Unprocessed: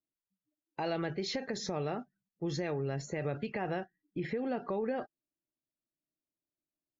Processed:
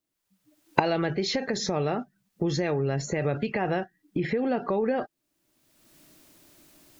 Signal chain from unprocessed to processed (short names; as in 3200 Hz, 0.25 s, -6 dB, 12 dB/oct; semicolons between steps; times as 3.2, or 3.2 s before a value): recorder AGC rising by 31 dB/s; gain +8 dB